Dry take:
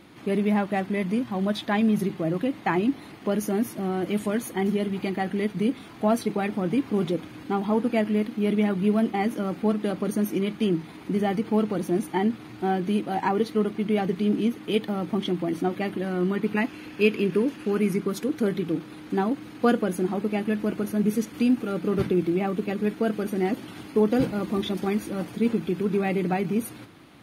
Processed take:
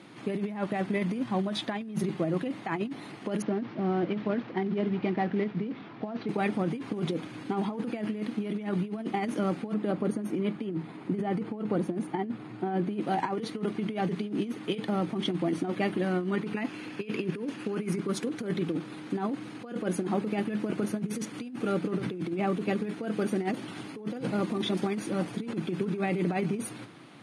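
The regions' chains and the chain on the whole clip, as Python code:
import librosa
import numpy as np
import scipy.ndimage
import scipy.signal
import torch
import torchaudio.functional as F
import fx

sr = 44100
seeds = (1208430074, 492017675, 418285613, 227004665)

y = fx.chain(x, sr, fx.cvsd(bps=32000),
    fx.highpass(hz=59.0, slope=12),
    fx.air_absorb(metres=330.0), at=(3.42, 6.29))
y = fx.chain(y, sr, fx.high_shelf(hz=2400.0, db=-10.5),
    fx.notch(hz=5900.0, q=9.4), at=(9.74, 13.01))
y = fx.over_compress(y, sr, threshold_db=-26.0, ratio=-0.5)
y = scipy.signal.sosfilt(scipy.signal.ellip(3, 1.0, 40, [120.0, 9600.0], 'bandpass', fs=sr, output='sos'), y)
y = F.gain(torch.from_numpy(y), -2.0).numpy()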